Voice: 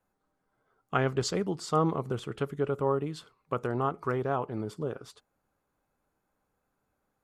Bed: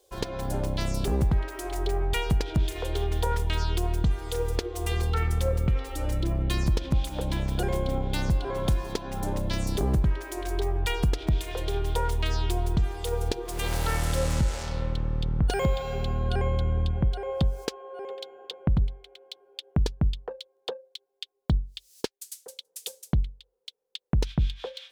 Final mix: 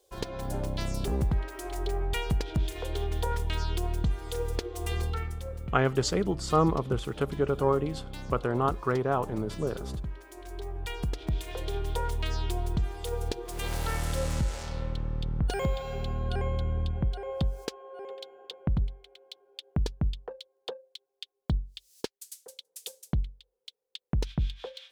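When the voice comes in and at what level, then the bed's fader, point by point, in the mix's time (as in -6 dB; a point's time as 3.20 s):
4.80 s, +2.5 dB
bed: 5.04 s -3.5 dB
5.42 s -12.5 dB
10.35 s -12.5 dB
11.50 s -4 dB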